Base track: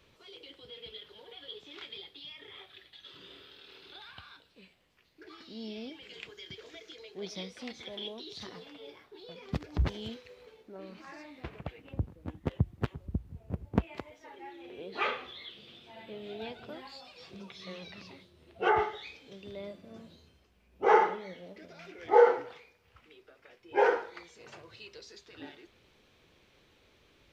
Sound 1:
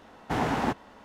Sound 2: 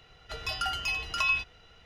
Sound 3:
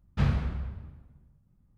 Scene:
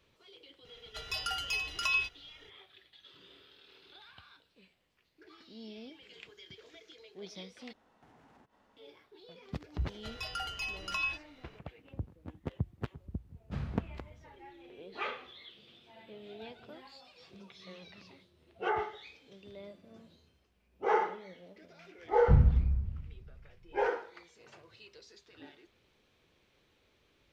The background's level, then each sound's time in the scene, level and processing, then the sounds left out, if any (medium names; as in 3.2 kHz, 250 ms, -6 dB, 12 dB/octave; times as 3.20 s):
base track -6 dB
0.65 s: add 2 -8 dB + treble shelf 2.1 kHz +8 dB
7.73 s: replace with 1 -17 dB + compression 8:1, threshold -42 dBFS
9.74 s: add 2 -7 dB
13.34 s: add 3 -13 dB
22.11 s: add 3 -12.5 dB + tilt EQ -4.5 dB/octave